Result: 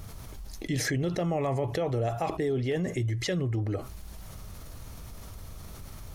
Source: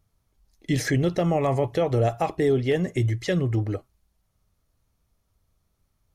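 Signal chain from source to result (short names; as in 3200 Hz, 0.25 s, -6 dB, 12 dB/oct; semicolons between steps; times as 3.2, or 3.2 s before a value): fast leveller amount 70%; gain -8 dB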